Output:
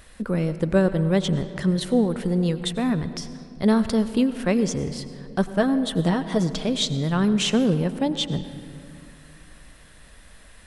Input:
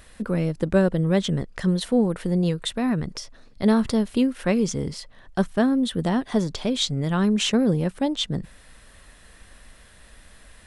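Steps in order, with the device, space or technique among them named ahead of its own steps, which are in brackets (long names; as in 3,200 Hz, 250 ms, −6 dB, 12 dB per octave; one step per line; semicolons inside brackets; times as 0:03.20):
0:05.56–0:06.62: comb filter 6.3 ms, depth 57%
saturated reverb return (on a send at −11 dB: convolution reverb RT60 2.3 s, pre-delay 84 ms + soft clipping −14.5 dBFS, distortion −18 dB)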